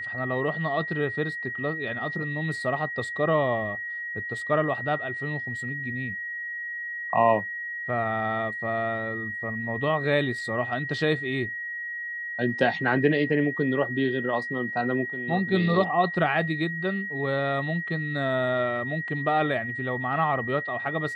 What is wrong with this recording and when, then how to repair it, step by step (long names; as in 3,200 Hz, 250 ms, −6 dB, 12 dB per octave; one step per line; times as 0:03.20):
whistle 1,900 Hz −31 dBFS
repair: notch filter 1,900 Hz, Q 30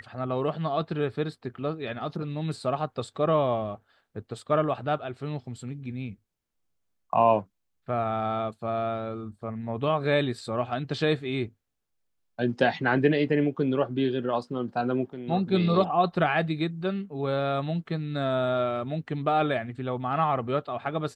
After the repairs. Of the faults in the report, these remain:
none of them is left